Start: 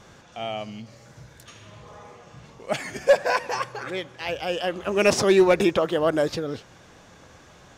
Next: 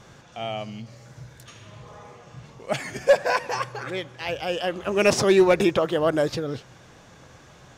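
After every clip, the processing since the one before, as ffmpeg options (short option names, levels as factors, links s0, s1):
-af "equalizer=f=130:t=o:w=0.31:g=7"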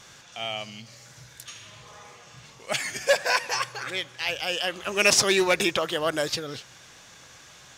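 -af "tiltshelf=f=1300:g=-8.5"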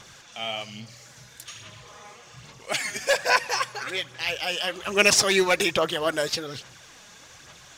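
-af "aphaser=in_gain=1:out_gain=1:delay=4.9:decay=0.42:speed=1.2:type=sinusoidal"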